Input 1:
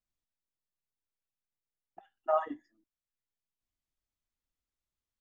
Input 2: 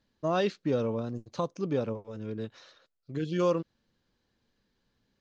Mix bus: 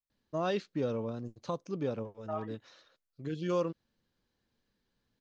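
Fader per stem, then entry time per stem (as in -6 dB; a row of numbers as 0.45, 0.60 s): -9.5, -4.5 dB; 0.00, 0.10 s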